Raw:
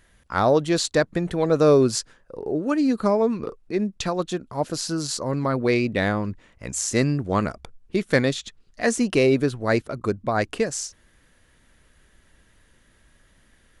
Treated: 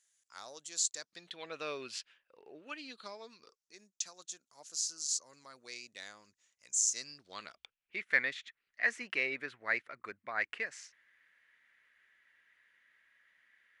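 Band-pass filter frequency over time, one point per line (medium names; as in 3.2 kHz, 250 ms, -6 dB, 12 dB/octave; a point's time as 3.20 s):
band-pass filter, Q 3.6
0.95 s 7 kHz
1.47 s 2.7 kHz
2.67 s 2.7 kHz
3.75 s 6.6 kHz
6.87 s 6.6 kHz
8.04 s 2 kHz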